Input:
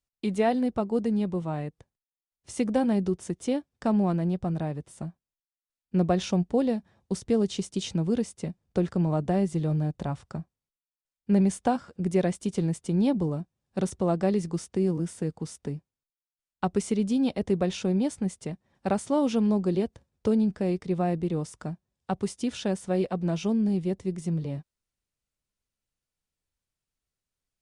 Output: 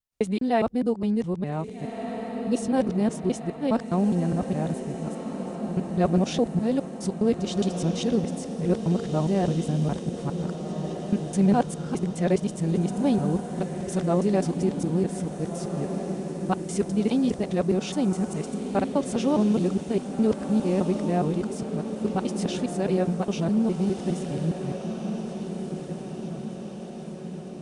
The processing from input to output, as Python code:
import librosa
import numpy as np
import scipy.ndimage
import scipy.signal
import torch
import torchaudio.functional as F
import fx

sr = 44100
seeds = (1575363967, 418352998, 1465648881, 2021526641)

y = fx.local_reverse(x, sr, ms=206.0)
y = fx.spec_repair(y, sr, seeds[0], start_s=2.31, length_s=0.36, low_hz=590.0, high_hz=2500.0, source='before')
y = fx.echo_diffused(y, sr, ms=1669, feedback_pct=60, wet_db=-7.5)
y = F.gain(torch.from_numpy(y), 1.5).numpy()